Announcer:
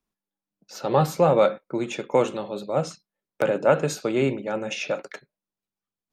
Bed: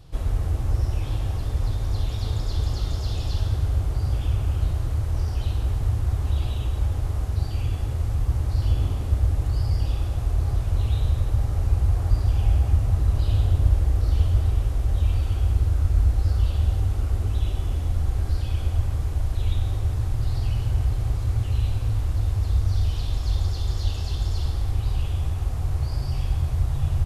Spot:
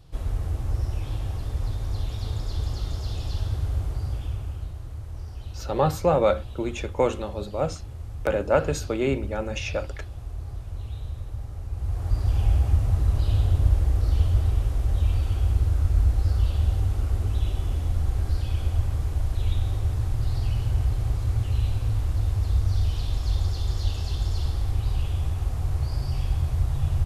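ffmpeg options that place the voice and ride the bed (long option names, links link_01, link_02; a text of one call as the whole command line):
ffmpeg -i stem1.wav -i stem2.wav -filter_complex "[0:a]adelay=4850,volume=-2dB[link_01];[1:a]volume=7dB,afade=type=out:start_time=3.84:duration=0.87:silence=0.398107,afade=type=in:start_time=11.71:duration=0.66:silence=0.298538[link_02];[link_01][link_02]amix=inputs=2:normalize=0" out.wav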